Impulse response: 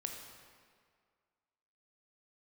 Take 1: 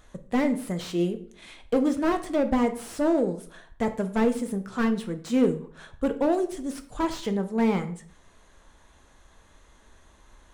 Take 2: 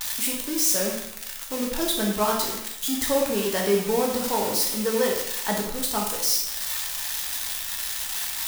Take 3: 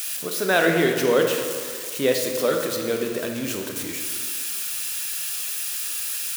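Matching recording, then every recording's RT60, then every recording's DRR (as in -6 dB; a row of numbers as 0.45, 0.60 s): 3; 0.55, 0.85, 2.0 s; 7.0, -1.5, 2.5 dB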